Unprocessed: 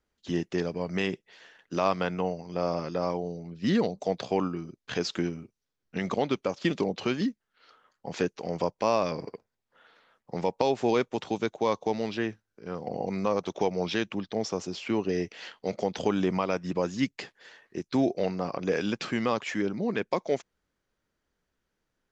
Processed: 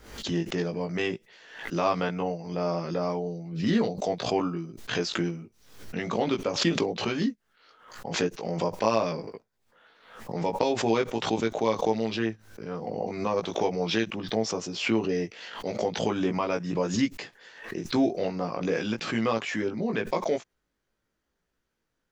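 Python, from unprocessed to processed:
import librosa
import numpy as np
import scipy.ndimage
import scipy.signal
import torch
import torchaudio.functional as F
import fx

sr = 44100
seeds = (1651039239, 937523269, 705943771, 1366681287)

y = fx.doubler(x, sr, ms=18.0, db=-3.0)
y = fx.pre_swell(y, sr, db_per_s=83.0)
y = F.gain(torch.from_numpy(y), -1.5).numpy()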